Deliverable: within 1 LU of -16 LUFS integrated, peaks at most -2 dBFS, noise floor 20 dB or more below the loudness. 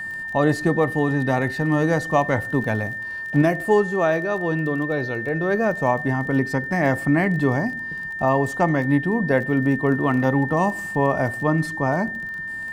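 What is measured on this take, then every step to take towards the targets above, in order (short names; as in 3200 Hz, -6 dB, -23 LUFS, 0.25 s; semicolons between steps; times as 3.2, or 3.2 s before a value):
ticks 23/s; steady tone 1800 Hz; tone level -28 dBFS; loudness -21.5 LUFS; peak -6.5 dBFS; loudness target -16.0 LUFS
-> de-click; notch 1800 Hz, Q 30; gain +5.5 dB; limiter -2 dBFS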